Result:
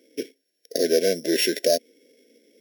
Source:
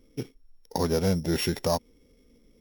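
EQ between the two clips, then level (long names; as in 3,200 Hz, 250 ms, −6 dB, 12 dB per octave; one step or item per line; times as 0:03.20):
high-pass filter 310 Hz 24 dB per octave
linear-phase brick-wall band-stop 690–1,500 Hz
+7.5 dB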